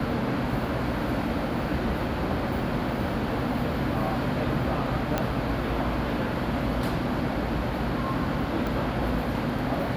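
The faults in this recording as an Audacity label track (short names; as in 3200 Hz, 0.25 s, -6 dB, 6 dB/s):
5.180000	5.180000	pop -11 dBFS
8.670000	8.670000	pop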